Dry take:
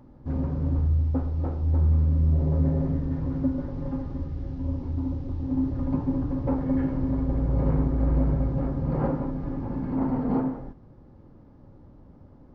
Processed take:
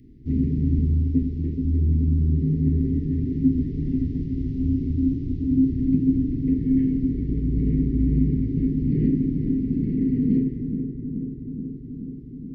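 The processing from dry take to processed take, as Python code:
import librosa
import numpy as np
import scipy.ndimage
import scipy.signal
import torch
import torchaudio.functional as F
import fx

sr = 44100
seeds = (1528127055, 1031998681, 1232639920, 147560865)

p1 = scipy.signal.sosfilt(scipy.signal.cheby1(5, 1.0, [430.0, 1900.0], 'bandstop', fs=sr, output='sos'), x)
p2 = fx.dynamic_eq(p1, sr, hz=210.0, q=1.4, threshold_db=-41.0, ratio=4.0, max_db=8)
p3 = fx.rider(p2, sr, range_db=4, speed_s=2.0)
y = p3 + fx.echo_filtered(p3, sr, ms=428, feedback_pct=77, hz=1300.0, wet_db=-7.5, dry=0)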